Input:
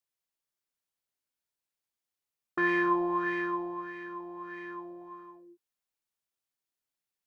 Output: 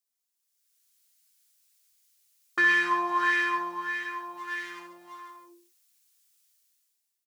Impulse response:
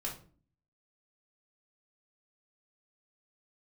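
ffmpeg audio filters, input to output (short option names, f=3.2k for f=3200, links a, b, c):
-filter_complex "[0:a]asettb=1/sr,asplit=3[a][b][c];[a]atrim=end=4.374[d];[b]atrim=start=4.37:end=5.3,asetpts=PTS-STARTPTS,afade=t=in:d=0.004:c=qsin,afade=t=out:st=0.926:d=0.004:c=qsin,aeval=exprs='if(lt(val(0),0),0.708*val(0),val(0))':c=same[e];[c]atrim=start=5.296[f];[d][e]acrossfade=d=0.004:c1=hsin:c2=qsin[g];[g][f]acrossfade=d=0.004:c1=qsin:c2=hsin,highpass=190,bass=f=250:g=4,treble=f=4k:g=10,acrossover=split=1400[h][i];[i]dynaudnorm=f=120:g=11:m=16.5dB[j];[h][j]amix=inputs=2:normalize=0,alimiter=limit=-11.5dB:level=0:latency=1:release=328,flanger=delay=8.3:depth=1:regen=-40:speed=0.92:shape=triangular,aecho=1:1:64|136|158:0.398|0.299|0.106"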